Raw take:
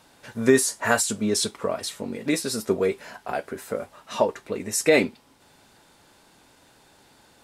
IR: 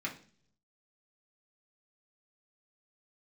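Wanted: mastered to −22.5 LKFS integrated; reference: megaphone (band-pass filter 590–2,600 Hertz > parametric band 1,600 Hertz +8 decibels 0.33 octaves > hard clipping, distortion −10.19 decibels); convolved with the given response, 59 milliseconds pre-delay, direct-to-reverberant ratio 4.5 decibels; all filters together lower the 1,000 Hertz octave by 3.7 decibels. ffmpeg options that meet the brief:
-filter_complex "[0:a]equalizer=frequency=1000:width_type=o:gain=-5,asplit=2[link_01][link_02];[1:a]atrim=start_sample=2205,adelay=59[link_03];[link_02][link_03]afir=irnorm=-1:irlink=0,volume=-7.5dB[link_04];[link_01][link_04]amix=inputs=2:normalize=0,highpass=590,lowpass=2600,equalizer=frequency=1600:width_type=o:width=0.33:gain=8,asoftclip=type=hard:threshold=-20dB,volume=8dB"

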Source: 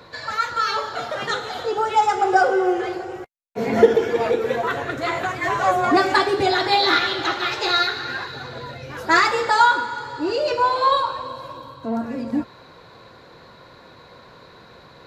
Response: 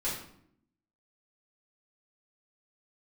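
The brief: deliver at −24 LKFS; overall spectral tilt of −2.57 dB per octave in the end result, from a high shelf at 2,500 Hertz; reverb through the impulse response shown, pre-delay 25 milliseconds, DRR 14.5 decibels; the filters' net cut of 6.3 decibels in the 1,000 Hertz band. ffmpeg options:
-filter_complex "[0:a]equalizer=frequency=1000:width_type=o:gain=-7,highshelf=frequency=2500:gain=-8,asplit=2[link_01][link_02];[1:a]atrim=start_sample=2205,adelay=25[link_03];[link_02][link_03]afir=irnorm=-1:irlink=0,volume=-20dB[link_04];[link_01][link_04]amix=inputs=2:normalize=0"

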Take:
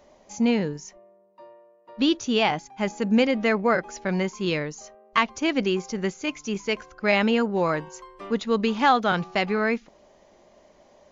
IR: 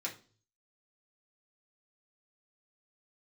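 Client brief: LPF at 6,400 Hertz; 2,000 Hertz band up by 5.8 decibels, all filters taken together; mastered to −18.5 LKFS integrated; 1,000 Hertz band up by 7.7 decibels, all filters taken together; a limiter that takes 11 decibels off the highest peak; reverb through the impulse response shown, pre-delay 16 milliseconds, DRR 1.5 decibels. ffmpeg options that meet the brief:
-filter_complex "[0:a]lowpass=6400,equalizer=frequency=1000:width_type=o:gain=9,equalizer=frequency=2000:width_type=o:gain=4.5,alimiter=limit=-9.5dB:level=0:latency=1,asplit=2[link_01][link_02];[1:a]atrim=start_sample=2205,adelay=16[link_03];[link_02][link_03]afir=irnorm=-1:irlink=0,volume=-3dB[link_04];[link_01][link_04]amix=inputs=2:normalize=0,volume=2.5dB"

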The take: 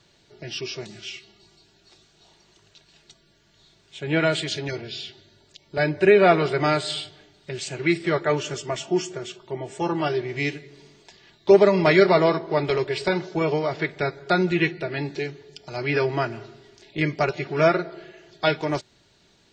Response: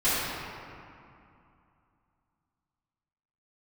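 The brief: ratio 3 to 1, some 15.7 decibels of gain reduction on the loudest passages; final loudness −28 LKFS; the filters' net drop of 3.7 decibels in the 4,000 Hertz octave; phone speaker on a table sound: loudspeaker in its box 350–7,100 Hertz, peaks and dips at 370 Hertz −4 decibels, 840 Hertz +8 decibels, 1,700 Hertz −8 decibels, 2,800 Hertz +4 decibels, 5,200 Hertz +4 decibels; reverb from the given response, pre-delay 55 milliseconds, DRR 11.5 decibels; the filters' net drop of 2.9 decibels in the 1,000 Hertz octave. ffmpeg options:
-filter_complex "[0:a]equalizer=frequency=1000:width_type=o:gain=-8.5,equalizer=frequency=4000:width_type=o:gain=-7,acompressor=threshold=-34dB:ratio=3,asplit=2[link_01][link_02];[1:a]atrim=start_sample=2205,adelay=55[link_03];[link_02][link_03]afir=irnorm=-1:irlink=0,volume=-26.5dB[link_04];[link_01][link_04]amix=inputs=2:normalize=0,highpass=frequency=350:width=0.5412,highpass=frequency=350:width=1.3066,equalizer=frequency=370:width_type=q:width=4:gain=-4,equalizer=frequency=840:width_type=q:width=4:gain=8,equalizer=frequency=1700:width_type=q:width=4:gain=-8,equalizer=frequency=2800:width_type=q:width=4:gain=4,equalizer=frequency=5200:width_type=q:width=4:gain=4,lowpass=frequency=7100:width=0.5412,lowpass=frequency=7100:width=1.3066,volume=10dB"

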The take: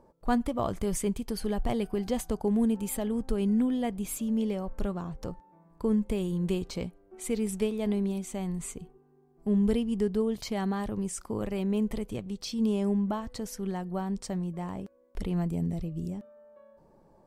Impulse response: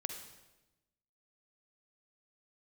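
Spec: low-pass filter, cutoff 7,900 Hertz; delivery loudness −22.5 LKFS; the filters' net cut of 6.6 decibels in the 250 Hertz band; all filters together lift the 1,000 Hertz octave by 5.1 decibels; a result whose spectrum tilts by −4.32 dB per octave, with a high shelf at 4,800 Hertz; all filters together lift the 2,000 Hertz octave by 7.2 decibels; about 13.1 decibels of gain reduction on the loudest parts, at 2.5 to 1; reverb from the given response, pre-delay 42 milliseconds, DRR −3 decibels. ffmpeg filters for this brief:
-filter_complex "[0:a]lowpass=7900,equalizer=frequency=250:width_type=o:gain=-9,equalizer=frequency=1000:width_type=o:gain=6,equalizer=frequency=2000:width_type=o:gain=6,highshelf=frequency=4800:gain=7.5,acompressor=threshold=-41dB:ratio=2.5,asplit=2[link_01][link_02];[1:a]atrim=start_sample=2205,adelay=42[link_03];[link_02][link_03]afir=irnorm=-1:irlink=0,volume=3dB[link_04];[link_01][link_04]amix=inputs=2:normalize=0,volume=15dB"

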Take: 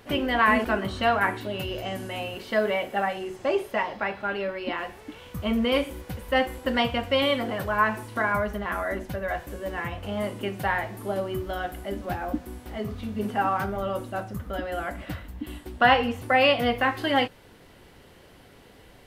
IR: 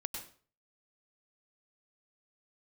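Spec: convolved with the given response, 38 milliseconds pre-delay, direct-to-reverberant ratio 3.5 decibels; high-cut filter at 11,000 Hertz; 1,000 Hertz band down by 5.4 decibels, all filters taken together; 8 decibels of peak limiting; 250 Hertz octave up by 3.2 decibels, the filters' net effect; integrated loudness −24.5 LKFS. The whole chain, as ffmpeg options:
-filter_complex "[0:a]lowpass=11000,equalizer=frequency=250:width_type=o:gain=4,equalizer=frequency=1000:width_type=o:gain=-8,alimiter=limit=-18dB:level=0:latency=1,asplit=2[link_01][link_02];[1:a]atrim=start_sample=2205,adelay=38[link_03];[link_02][link_03]afir=irnorm=-1:irlink=0,volume=-3.5dB[link_04];[link_01][link_04]amix=inputs=2:normalize=0,volume=4dB"

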